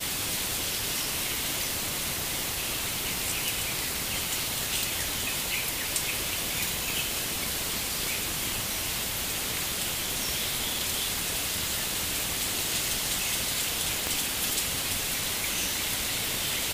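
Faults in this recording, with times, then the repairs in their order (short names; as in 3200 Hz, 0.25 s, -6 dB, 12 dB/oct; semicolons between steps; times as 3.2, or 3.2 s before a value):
6.9 pop
14.07 pop -12 dBFS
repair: de-click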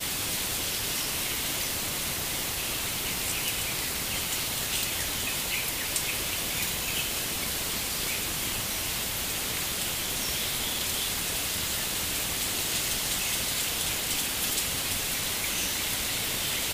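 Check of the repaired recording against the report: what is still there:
none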